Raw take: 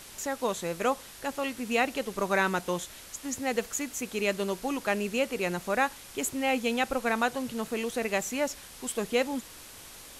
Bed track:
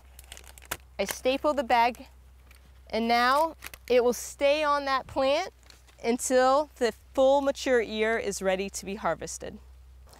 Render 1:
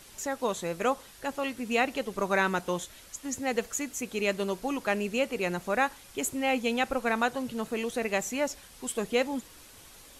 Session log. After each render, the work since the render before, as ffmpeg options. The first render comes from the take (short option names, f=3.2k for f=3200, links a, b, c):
-af "afftdn=nr=6:nf=-48"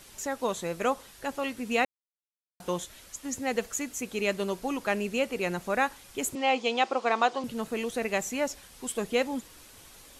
-filter_complex "[0:a]asettb=1/sr,asplit=3[a][b][c];[a]atrim=end=6.354[d];[b]atrim=start=6.35:end=7.44,asetpts=PTS-STARTPTS,afade=t=in:d=0.004:c=qsin,afade=t=out:st=1.086:d=0.004:c=qsin,highpass=320,equalizer=f=360:t=q:w=4:g=8,equalizer=f=740:t=q:w=4:g=5,equalizer=f=1.1k:t=q:w=4:g=6,equalizer=f=1.6k:t=q:w=4:g=-4,equalizer=f=3.2k:t=q:w=4:g=5,equalizer=f=4.8k:t=q:w=4:g=5,lowpass=f=7.3k:w=0.5412,lowpass=f=7.3k:w=1.3066[e];[c]atrim=start=7.436[f];[d][e]acrossfade=d=0.004:c1=hsin:c2=qsin[g];[g][f]acrossfade=d=0.004:c1=qsin:c2=hsin,asplit=3[h][i][j];[h]atrim=end=1.85,asetpts=PTS-STARTPTS,afade=t=out:st=1.846:d=0.004:c=hsin[k];[i]atrim=start=1.85:end=2.6,asetpts=PTS-STARTPTS,volume=0[l];[j]atrim=start=2.6,asetpts=PTS-STARTPTS,afade=t=in:d=0.004:c=hsin[m];[k][l][m]concat=n=3:v=0:a=1"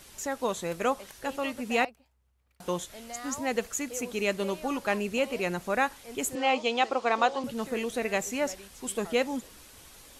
-filter_complex "[1:a]volume=-18.5dB[a];[0:a][a]amix=inputs=2:normalize=0"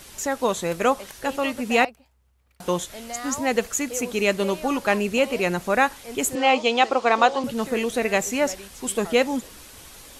-af "volume=7dB"